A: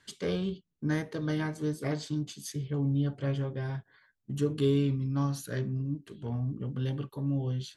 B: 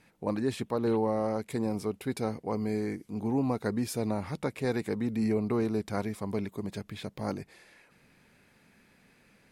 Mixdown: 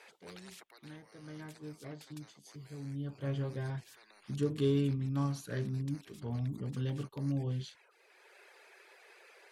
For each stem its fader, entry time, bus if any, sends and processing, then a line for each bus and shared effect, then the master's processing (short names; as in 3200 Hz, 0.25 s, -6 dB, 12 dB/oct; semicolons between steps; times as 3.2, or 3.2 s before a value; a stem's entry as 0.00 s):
1.04 s -21 dB -> 1.46 s -14.5 dB -> 2.82 s -14.5 dB -> 3.37 s -3.5 dB, 0.00 s, no send, dry
-5.0 dB, 0.00 s, no send, elliptic high-pass 380 Hz, stop band 40 dB; reverb removal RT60 0.72 s; spectral compressor 10:1; auto duck -10 dB, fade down 1.10 s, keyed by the first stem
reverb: off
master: high shelf 11000 Hz -10.5 dB